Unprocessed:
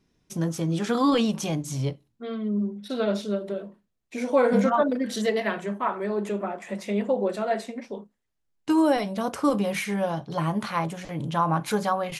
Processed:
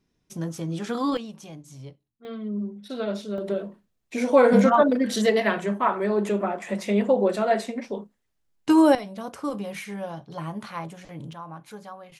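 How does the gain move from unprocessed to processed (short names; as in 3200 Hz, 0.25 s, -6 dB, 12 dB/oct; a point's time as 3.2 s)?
-4 dB
from 1.17 s -14 dB
from 2.25 s -3.5 dB
from 3.38 s +4 dB
from 8.95 s -7 dB
from 11.33 s -16 dB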